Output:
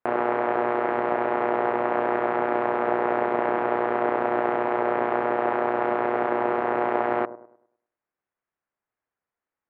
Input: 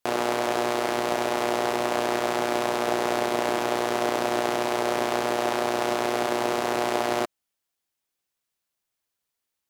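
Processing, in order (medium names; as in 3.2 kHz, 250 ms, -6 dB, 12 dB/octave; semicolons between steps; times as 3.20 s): low-pass 1.9 kHz 24 dB/octave; bass shelf 200 Hz -6 dB; feedback echo behind a low-pass 102 ms, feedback 35%, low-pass 820 Hz, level -13 dB; trim +2.5 dB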